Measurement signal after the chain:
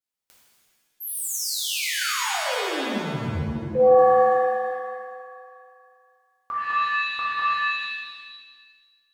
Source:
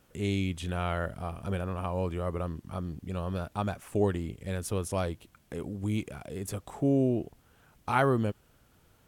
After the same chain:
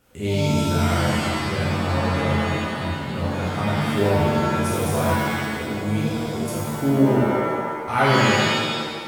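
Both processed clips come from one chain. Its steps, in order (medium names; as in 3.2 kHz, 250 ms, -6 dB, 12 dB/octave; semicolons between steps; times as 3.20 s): pitch-shifted reverb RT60 1.5 s, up +7 st, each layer -2 dB, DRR -7 dB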